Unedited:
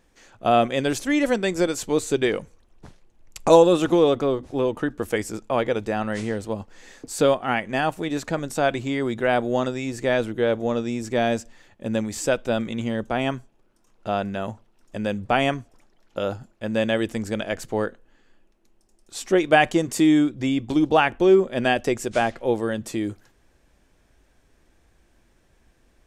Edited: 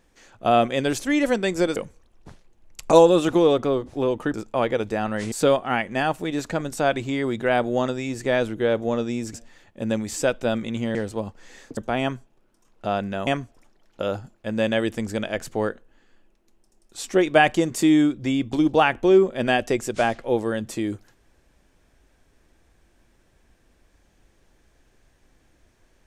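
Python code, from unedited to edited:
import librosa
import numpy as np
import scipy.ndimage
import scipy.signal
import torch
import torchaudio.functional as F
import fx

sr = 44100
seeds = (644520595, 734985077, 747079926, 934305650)

y = fx.edit(x, sr, fx.cut(start_s=1.76, length_s=0.57),
    fx.cut(start_s=4.91, length_s=0.39),
    fx.move(start_s=6.28, length_s=0.82, to_s=12.99),
    fx.cut(start_s=11.12, length_s=0.26),
    fx.cut(start_s=14.49, length_s=0.95), tone=tone)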